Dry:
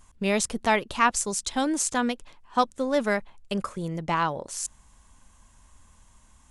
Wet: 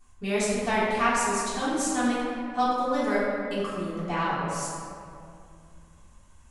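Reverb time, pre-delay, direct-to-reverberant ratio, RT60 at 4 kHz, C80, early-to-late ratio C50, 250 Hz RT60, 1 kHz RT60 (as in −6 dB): 2.4 s, 3 ms, −10.5 dB, 1.3 s, 0.0 dB, −2.0 dB, 2.8 s, 2.2 s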